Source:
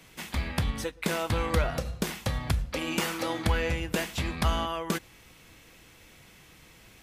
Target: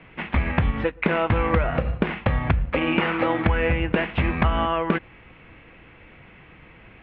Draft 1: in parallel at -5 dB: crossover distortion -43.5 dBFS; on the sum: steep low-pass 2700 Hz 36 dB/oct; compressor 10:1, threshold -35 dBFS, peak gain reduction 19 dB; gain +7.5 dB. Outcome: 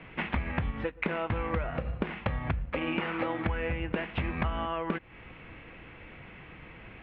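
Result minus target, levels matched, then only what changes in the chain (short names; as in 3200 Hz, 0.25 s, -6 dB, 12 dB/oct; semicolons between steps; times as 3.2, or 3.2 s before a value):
compressor: peak gain reduction +10.5 dB
change: compressor 10:1, threshold -23.5 dBFS, peak gain reduction 8.5 dB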